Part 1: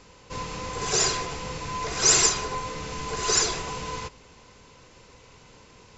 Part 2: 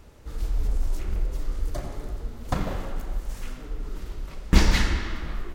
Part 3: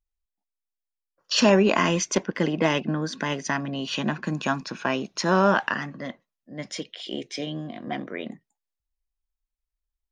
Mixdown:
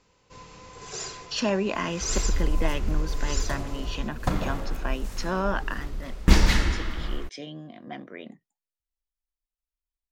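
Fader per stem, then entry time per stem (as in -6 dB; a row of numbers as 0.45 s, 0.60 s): -12.5 dB, +0.5 dB, -7.5 dB; 0.00 s, 1.75 s, 0.00 s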